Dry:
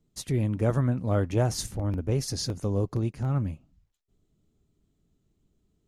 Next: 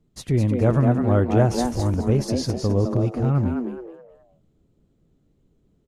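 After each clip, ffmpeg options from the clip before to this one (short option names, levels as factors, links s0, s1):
-filter_complex "[0:a]highshelf=f=3700:g=-10,asplit=2[s0][s1];[s1]asplit=4[s2][s3][s4][s5];[s2]adelay=210,afreqshift=120,volume=0.501[s6];[s3]adelay=420,afreqshift=240,volume=0.15[s7];[s4]adelay=630,afreqshift=360,volume=0.0452[s8];[s5]adelay=840,afreqshift=480,volume=0.0135[s9];[s6][s7][s8][s9]amix=inputs=4:normalize=0[s10];[s0][s10]amix=inputs=2:normalize=0,volume=2"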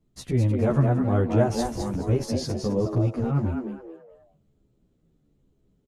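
-filter_complex "[0:a]asplit=2[s0][s1];[s1]adelay=11.7,afreqshift=-1.1[s2];[s0][s2]amix=inputs=2:normalize=1"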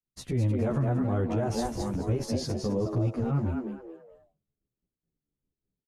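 -af "agate=range=0.0224:threshold=0.00251:ratio=3:detection=peak,alimiter=limit=0.141:level=0:latency=1:release=42,volume=0.75"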